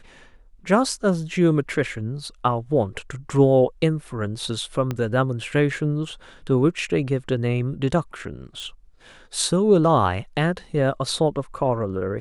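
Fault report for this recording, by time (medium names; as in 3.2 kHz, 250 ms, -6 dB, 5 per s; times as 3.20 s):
4.91 s: pop -13 dBFS
8.60 s: pop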